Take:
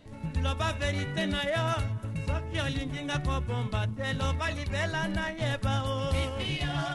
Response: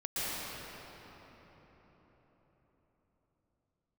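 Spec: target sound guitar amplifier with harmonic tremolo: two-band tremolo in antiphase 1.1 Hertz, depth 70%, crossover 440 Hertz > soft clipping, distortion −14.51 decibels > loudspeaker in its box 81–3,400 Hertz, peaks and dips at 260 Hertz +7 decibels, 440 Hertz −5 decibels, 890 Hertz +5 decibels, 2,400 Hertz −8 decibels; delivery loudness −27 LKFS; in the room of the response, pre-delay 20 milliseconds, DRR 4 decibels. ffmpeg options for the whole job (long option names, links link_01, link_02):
-filter_complex "[0:a]asplit=2[link_01][link_02];[1:a]atrim=start_sample=2205,adelay=20[link_03];[link_02][link_03]afir=irnorm=-1:irlink=0,volume=-11.5dB[link_04];[link_01][link_04]amix=inputs=2:normalize=0,acrossover=split=440[link_05][link_06];[link_05]aeval=exprs='val(0)*(1-0.7/2+0.7/2*cos(2*PI*1.1*n/s))':channel_layout=same[link_07];[link_06]aeval=exprs='val(0)*(1-0.7/2-0.7/2*cos(2*PI*1.1*n/s))':channel_layout=same[link_08];[link_07][link_08]amix=inputs=2:normalize=0,asoftclip=threshold=-27dB,highpass=81,equalizer=frequency=260:width_type=q:width=4:gain=7,equalizer=frequency=440:width_type=q:width=4:gain=-5,equalizer=frequency=890:width_type=q:width=4:gain=5,equalizer=frequency=2400:width_type=q:width=4:gain=-8,lowpass=frequency=3400:width=0.5412,lowpass=frequency=3400:width=1.3066,volume=8dB"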